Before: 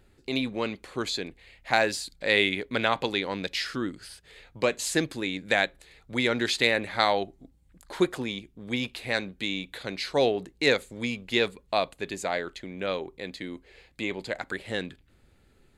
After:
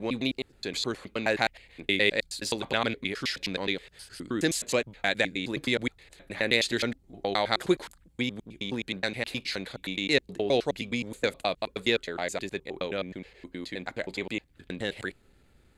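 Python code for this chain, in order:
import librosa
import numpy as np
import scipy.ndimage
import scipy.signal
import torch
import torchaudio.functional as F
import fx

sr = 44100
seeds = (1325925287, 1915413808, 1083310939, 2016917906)

y = fx.block_reorder(x, sr, ms=105.0, group=6)
y = fx.dynamic_eq(y, sr, hz=1000.0, q=0.98, threshold_db=-37.0, ratio=4.0, max_db=-5)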